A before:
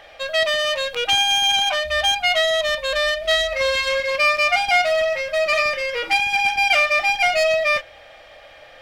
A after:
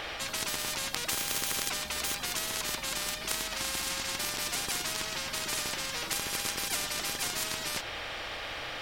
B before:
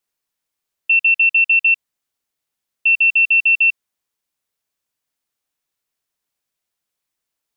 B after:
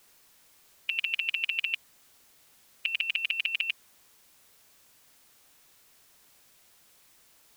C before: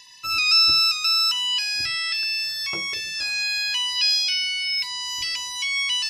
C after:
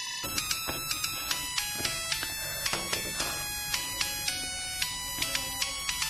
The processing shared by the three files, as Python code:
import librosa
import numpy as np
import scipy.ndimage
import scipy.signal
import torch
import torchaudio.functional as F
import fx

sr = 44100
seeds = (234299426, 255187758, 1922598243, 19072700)

y = fx.spectral_comp(x, sr, ratio=10.0)
y = y * 10.0 ** (-2.5 / 20.0)